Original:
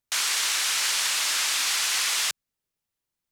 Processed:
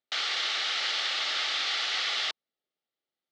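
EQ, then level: Butterworth band-stop 1 kHz, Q 5.9; cabinet simulation 330–3900 Hz, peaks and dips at 1 kHz -6 dB, 1.6 kHz -7 dB, 2.5 kHz -8 dB; +2.5 dB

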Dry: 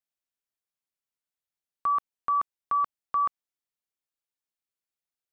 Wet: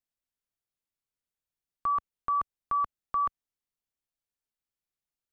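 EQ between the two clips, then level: bass shelf 83 Hz +8 dB; bass shelf 390 Hz +5.5 dB; -3.0 dB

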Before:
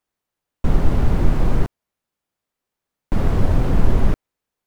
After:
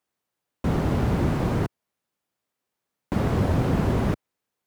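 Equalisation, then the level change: high-pass 91 Hz 12 dB/octave; 0.0 dB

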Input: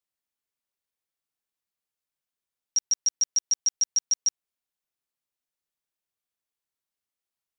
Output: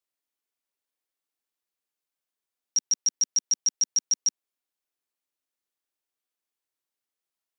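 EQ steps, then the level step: resonant low shelf 210 Hz -7 dB, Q 1.5; 0.0 dB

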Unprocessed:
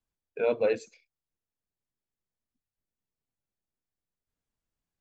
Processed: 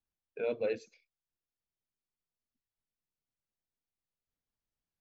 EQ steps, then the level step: steep low-pass 6.3 kHz; dynamic bell 980 Hz, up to -8 dB, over -44 dBFS, Q 1.4; -5.5 dB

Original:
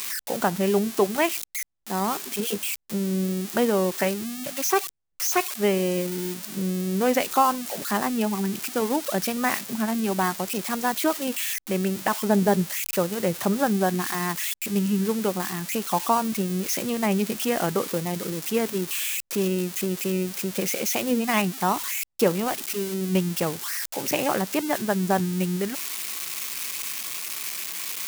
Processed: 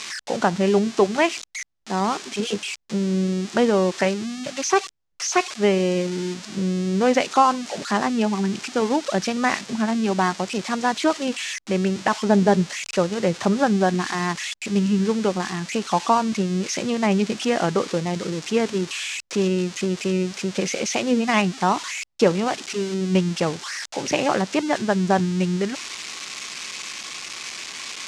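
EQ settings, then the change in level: low-pass 6.8 kHz 24 dB/octave; +3.5 dB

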